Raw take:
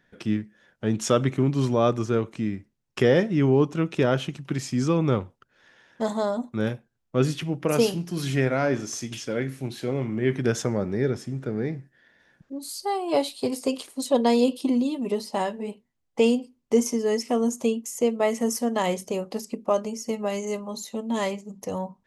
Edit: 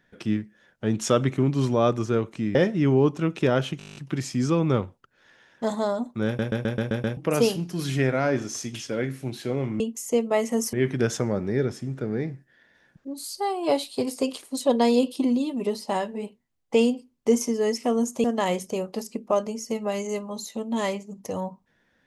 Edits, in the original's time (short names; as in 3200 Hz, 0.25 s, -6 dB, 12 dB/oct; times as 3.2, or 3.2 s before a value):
2.55–3.11 cut
4.34 stutter 0.02 s, 10 plays
6.64 stutter in place 0.13 s, 7 plays
17.69–18.62 move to 10.18